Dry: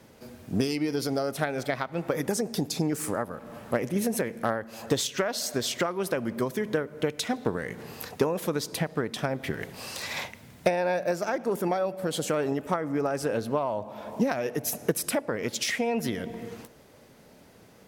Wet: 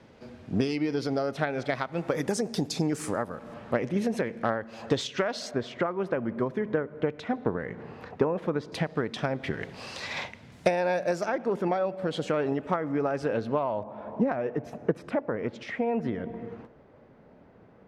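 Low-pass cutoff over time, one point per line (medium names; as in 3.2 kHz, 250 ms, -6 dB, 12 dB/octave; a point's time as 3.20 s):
4 kHz
from 1.69 s 7.6 kHz
from 3.54 s 4 kHz
from 5.51 s 1.8 kHz
from 8.72 s 4.6 kHz
from 10.52 s 7.8 kHz
from 11.26 s 3.4 kHz
from 13.83 s 1.5 kHz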